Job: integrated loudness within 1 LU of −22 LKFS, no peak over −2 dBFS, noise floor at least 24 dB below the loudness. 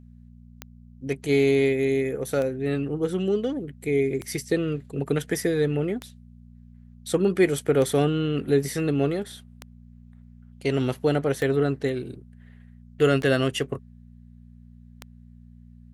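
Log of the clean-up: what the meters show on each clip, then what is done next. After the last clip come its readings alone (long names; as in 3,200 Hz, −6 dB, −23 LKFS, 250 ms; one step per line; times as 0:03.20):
number of clicks 9; mains hum 60 Hz; hum harmonics up to 240 Hz; level of the hum −46 dBFS; integrated loudness −24.5 LKFS; sample peak −8.0 dBFS; target loudness −22.0 LKFS
→ click removal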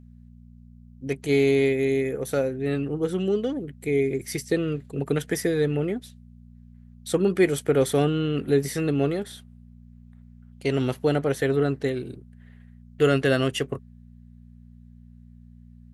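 number of clicks 0; mains hum 60 Hz; hum harmonics up to 240 Hz; level of the hum −46 dBFS
→ hum removal 60 Hz, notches 4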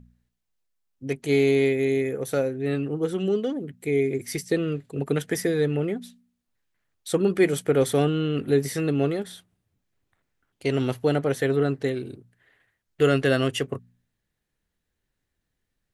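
mains hum none found; integrated loudness −25.0 LKFS; sample peak −8.0 dBFS; target loudness −22.0 LKFS
→ level +3 dB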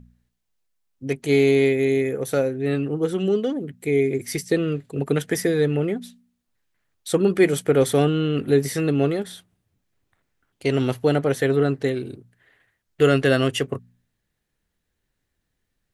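integrated loudness −22.0 LKFS; sample peak −5.0 dBFS; background noise floor −77 dBFS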